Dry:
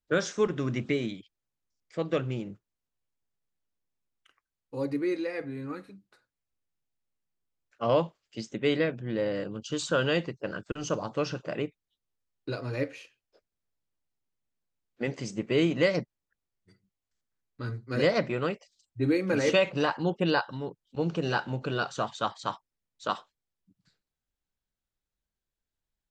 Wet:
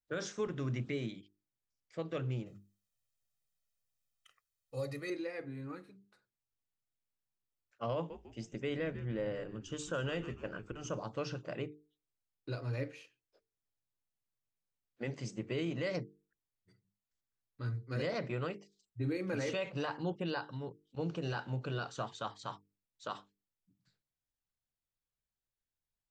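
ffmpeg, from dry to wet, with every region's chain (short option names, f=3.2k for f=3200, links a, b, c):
-filter_complex "[0:a]asettb=1/sr,asplit=3[a][b][c];[a]atrim=end=2.464[d];[b]atrim=start=2.46:end=5.1,asetpts=PTS-STARTPTS,afade=t=in:d=0.004:c=qsin,afade=t=out:st=2.636:d=0.004:c=qsin,highshelf=f=3k:g=11,aecho=1:1:1.6:0.72,atrim=end_sample=116424[e];[c]atrim=start=5.096[f];[d][e]acrossfade=d=0.004:c1=hsin:c2=qsin[g];[g][f]acrossfade=d=0.004:c1=qsin:c2=hsin,asettb=1/sr,asplit=3[h][i][j];[h]atrim=end=7.954[k];[i]atrim=start=7.95:end=10.99,asetpts=PTS-STARTPTS,afade=t=in:d=0.004:c=qsin,afade=t=out:st=3.036:d=0.004:c=qsin,equalizer=f=4.3k:w=3.9:g=-12,asplit=5[l][m][n][o][p];[m]adelay=149,afreqshift=-110,volume=-15.5dB[q];[n]adelay=298,afreqshift=-220,volume=-22.2dB[r];[o]adelay=447,afreqshift=-330,volume=-29dB[s];[p]adelay=596,afreqshift=-440,volume=-35.7dB[t];[l][q][r][s][t]amix=inputs=5:normalize=0,atrim=end_sample=134064[u];[j]atrim=start=10.986[v];[k][u]acrossfade=d=0.004:c1=hsin:c2=qsin[w];[w][v]acrossfade=d=0.004:c1=qsin:c2=hsin,equalizer=f=120:t=o:w=0.35:g=7,bandreject=f=50:t=h:w=6,bandreject=f=100:t=h:w=6,bandreject=f=150:t=h:w=6,bandreject=f=200:t=h:w=6,bandreject=f=250:t=h:w=6,bandreject=f=300:t=h:w=6,bandreject=f=350:t=h:w=6,bandreject=f=400:t=h:w=6,bandreject=f=450:t=h:w=6,alimiter=limit=-20dB:level=0:latency=1:release=38,volume=-7.5dB"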